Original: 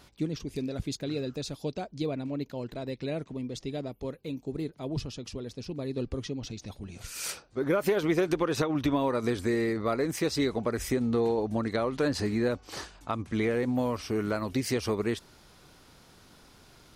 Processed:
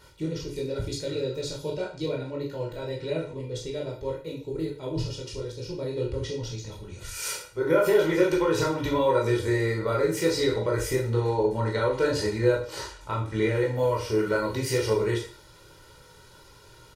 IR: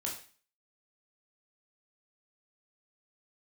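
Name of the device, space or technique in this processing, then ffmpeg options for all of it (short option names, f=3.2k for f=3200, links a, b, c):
microphone above a desk: -filter_complex "[0:a]aecho=1:1:2.1:0.82[a];[1:a]atrim=start_sample=2205[b];[a][b]afir=irnorm=-1:irlink=0"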